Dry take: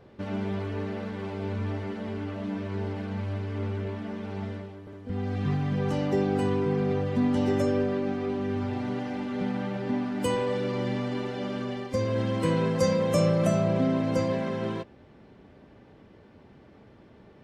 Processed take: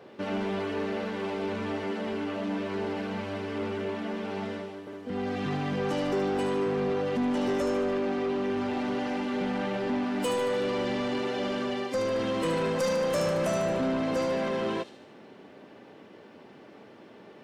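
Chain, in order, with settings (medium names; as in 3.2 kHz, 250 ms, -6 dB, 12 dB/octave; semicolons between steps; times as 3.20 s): high-pass 260 Hz 12 dB/octave; peaking EQ 2.8 kHz +3 dB 0.23 oct; in parallel at -0.5 dB: peak limiter -25.5 dBFS, peak gain reduction 11.5 dB; on the sum: saturation -23 dBFS, distortion -13 dB; feedback echo behind a high-pass 75 ms, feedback 58%, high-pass 4.5 kHz, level -5 dB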